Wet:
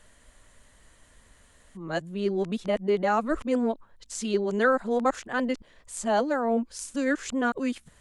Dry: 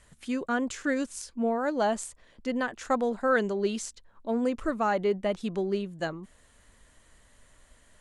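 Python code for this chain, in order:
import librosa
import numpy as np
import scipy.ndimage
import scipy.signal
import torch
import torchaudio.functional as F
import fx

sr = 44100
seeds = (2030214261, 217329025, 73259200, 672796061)

y = x[::-1].copy()
y = y * 10.0 ** (2.0 / 20.0)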